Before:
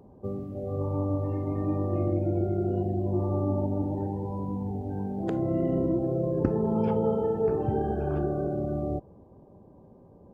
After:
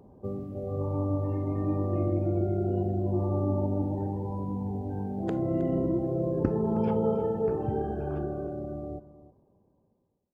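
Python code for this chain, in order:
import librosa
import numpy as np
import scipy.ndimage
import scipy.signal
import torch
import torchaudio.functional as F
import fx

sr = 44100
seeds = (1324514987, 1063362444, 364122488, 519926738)

y = fx.fade_out_tail(x, sr, length_s=3.19)
y = y + 10.0 ** (-15.5 / 20.0) * np.pad(y, (int(316 * sr / 1000.0), 0))[:len(y)]
y = y * librosa.db_to_amplitude(-1.0)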